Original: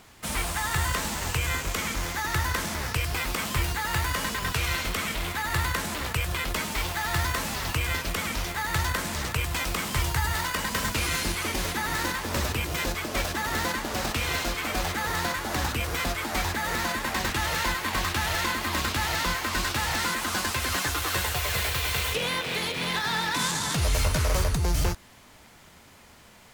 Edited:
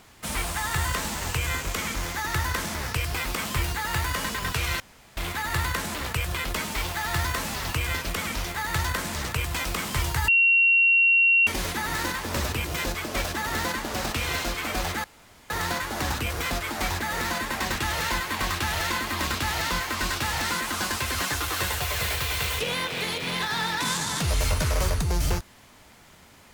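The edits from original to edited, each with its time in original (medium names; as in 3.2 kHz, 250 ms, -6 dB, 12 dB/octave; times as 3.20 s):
4.80–5.17 s: room tone
10.28–11.47 s: bleep 2.74 kHz -15.5 dBFS
15.04 s: insert room tone 0.46 s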